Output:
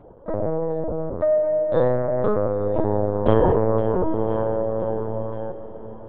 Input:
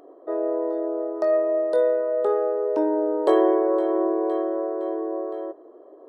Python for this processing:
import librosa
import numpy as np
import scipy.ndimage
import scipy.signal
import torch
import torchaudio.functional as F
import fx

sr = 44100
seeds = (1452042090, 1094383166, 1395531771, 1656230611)

y = fx.comb(x, sr, ms=7.4, depth=0.39, at=(4.34, 5.0))
y = fx.lpc_vocoder(y, sr, seeds[0], excitation='pitch_kept', order=8)
y = fx.echo_diffused(y, sr, ms=994, feedback_pct=40, wet_db=-15.0)
y = y * 10.0 ** (1.5 / 20.0)